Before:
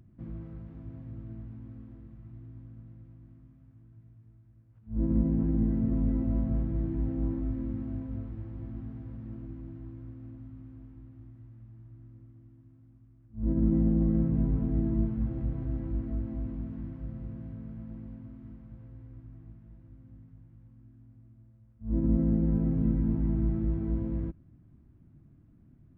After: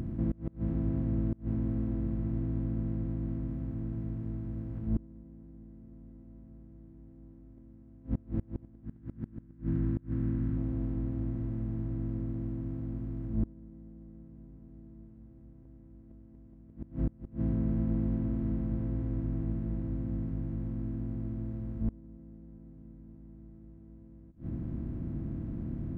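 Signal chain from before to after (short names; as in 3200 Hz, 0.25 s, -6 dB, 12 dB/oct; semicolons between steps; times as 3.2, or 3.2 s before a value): per-bin compression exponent 0.4; 8.85–10.57 fifteen-band EQ 160 Hz +4 dB, 630 Hz -10 dB, 1600 Hz +6 dB; flipped gate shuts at -20 dBFS, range -27 dB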